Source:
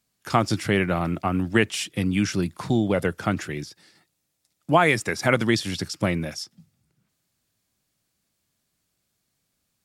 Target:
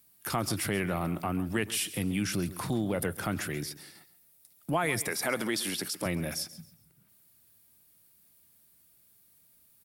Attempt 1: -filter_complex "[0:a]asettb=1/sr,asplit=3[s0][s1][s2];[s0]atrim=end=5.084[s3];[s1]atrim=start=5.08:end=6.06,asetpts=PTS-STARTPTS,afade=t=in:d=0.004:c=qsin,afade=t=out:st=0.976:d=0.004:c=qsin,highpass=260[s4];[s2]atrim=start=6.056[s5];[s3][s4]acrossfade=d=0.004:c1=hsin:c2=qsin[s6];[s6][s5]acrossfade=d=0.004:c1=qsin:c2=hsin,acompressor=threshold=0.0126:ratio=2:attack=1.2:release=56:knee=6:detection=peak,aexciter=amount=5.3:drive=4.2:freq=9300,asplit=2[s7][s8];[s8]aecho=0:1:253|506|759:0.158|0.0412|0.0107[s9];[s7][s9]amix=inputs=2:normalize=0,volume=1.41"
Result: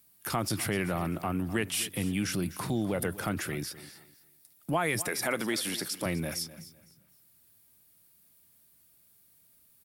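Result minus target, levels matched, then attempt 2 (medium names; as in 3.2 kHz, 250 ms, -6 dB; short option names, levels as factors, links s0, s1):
echo 118 ms late
-filter_complex "[0:a]asettb=1/sr,asplit=3[s0][s1][s2];[s0]atrim=end=5.084[s3];[s1]atrim=start=5.08:end=6.06,asetpts=PTS-STARTPTS,afade=t=in:d=0.004:c=qsin,afade=t=out:st=0.976:d=0.004:c=qsin,highpass=260[s4];[s2]atrim=start=6.056[s5];[s3][s4]acrossfade=d=0.004:c1=hsin:c2=qsin[s6];[s6][s5]acrossfade=d=0.004:c1=qsin:c2=hsin,acompressor=threshold=0.0126:ratio=2:attack=1.2:release=56:knee=6:detection=peak,aexciter=amount=5.3:drive=4.2:freq=9300,asplit=2[s7][s8];[s8]aecho=0:1:135|270|405:0.158|0.0412|0.0107[s9];[s7][s9]amix=inputs=2:normalize=0,volume=1.41"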